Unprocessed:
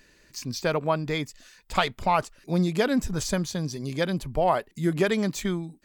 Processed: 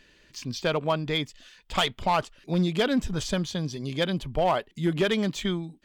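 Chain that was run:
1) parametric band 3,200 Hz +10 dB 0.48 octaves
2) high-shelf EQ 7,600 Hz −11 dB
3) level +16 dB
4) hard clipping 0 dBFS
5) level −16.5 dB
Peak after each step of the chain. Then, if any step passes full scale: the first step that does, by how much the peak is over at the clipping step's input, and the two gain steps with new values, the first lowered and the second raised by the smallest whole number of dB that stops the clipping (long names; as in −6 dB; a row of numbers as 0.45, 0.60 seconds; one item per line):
−6.5, −7.5, +8.5, 0.0, −16.5 dBFS
step 3, 8.5 dB
step 3 +7 dB, step 5 −7.5 dB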